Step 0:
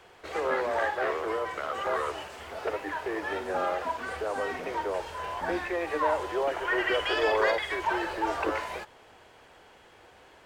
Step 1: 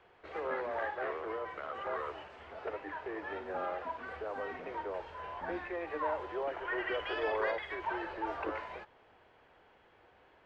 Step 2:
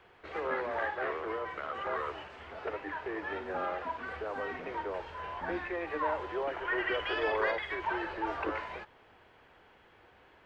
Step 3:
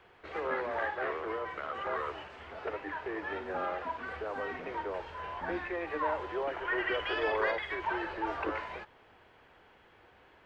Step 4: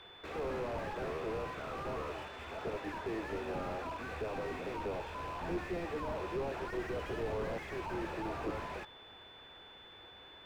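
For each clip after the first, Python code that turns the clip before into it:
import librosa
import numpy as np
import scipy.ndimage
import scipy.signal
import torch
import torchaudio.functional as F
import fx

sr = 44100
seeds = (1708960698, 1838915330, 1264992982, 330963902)

y1 = scipy.signal.sosfilt(scipy.signal.butter(2, 2800.0, 'lowpass', fs=sr, output='sos'), x)
y1 = y1 * 10.0 ** (-8.0 / 20.0)
y2 = fx.peak_eq(y1, sr, hz=620.0, db=-4.0, octaves=1.4)
y2 = y2 * 10.0 ** (5.0 / 20.0)
y3 = y2
y4 = fx.rattle_buzz(y3, sr, strikes_db=-54.0, level_db=-25.0)
y4 = y4 + 10.0 ** (-57.0 / 20.0) * np.sin(2.0 * np.pi * 3500.0 * np.arange(len(y4)) / sr)
y4 = fx.slew_limit(y4, sr, full_power_hz=7.5)
y4 = y4 * 10.0 ** (2.5 / 20.0)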